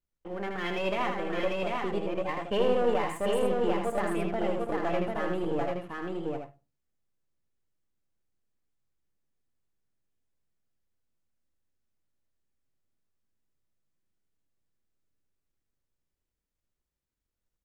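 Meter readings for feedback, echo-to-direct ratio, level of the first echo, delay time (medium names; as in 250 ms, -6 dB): no regular repeats, 0.0 dB, -5.0 dB, 79 ms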